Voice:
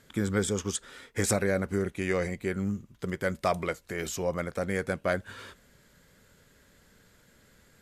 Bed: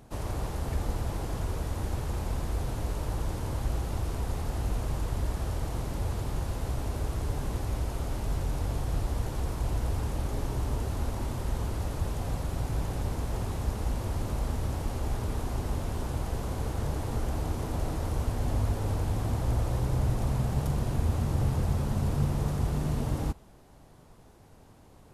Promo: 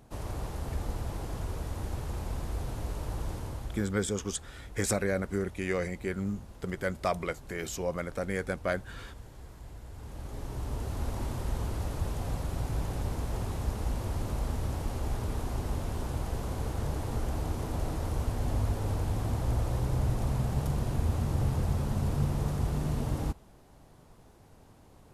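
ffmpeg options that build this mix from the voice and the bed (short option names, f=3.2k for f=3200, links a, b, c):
-filter_complex "[0:a]adelay=3600,volume=-2.5dB[a];[1:a]volume=11.5dB,afade=t=out:st=3.33:d=0.62:silence=0.223872,afade=t=in:st=9.91:d=1.26:silence=0.177828[b];[a][b]amix=inputs=2:normalize=0"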